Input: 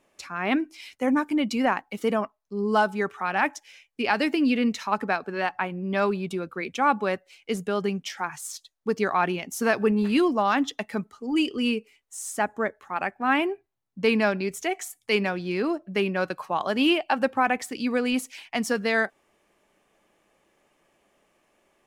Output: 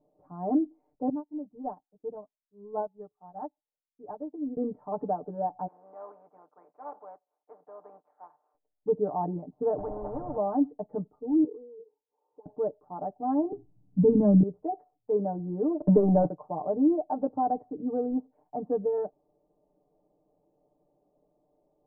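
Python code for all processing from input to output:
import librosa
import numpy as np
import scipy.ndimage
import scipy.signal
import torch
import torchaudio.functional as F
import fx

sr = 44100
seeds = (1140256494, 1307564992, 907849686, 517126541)

y = fx.chain(x, sr, fx.peak_eq(hz=350.0, db=-4.0, octaves=1.9),
    fx.upward_expand(threshold_db=-37.0, expansion=2.5), at=(1.09, 4.57))
y = fx.spec_flatten(y, sr, power=0.42, at=(5.66, 8.54), fade=0.02)
y = fx.highpass(y, sr, hz=1300.0, slope=12, at=(5.66, 8.54), fade=0.02)
y = fx.chain(y, sr, fx.delta_mod(bps=64000, step_db=-37.5),
    fx.air_absorb(metres=490.0),
    fx.spectral_comp(ratio=10.0), at=(9.78, 10.37))
y = fx.chain(y, sr, fx.double_bandpass(hz=660.0, octaves=0.93),
    fx.over_compress(threshold_db=-44.0, ratio=-1.0), at=(11.44, 12.46))
y = fx.chain(y, sr, fx.law_mismatch(coded='mu'),
    fx.low_shelf_res(hz=350.0, db=12.5, q=1.5), at=(13.52, 14.43))
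y = fx.chain(y, sr, fx.leveller(passes=3),
    fx.band_squash(depth_pct=100), at=(15.8, 16.29))
y = scipy.signal.sosfilt(scipy.signal.butter(6, 790.0, 'lowpass', fs=sr, output='sos'), y)
y = y + 1.0 * np.pad(y, (int(6.7 * sr / 1000.0), 0))[:len(y)]
y = y * librosa.db_to_amplitude(-4.5)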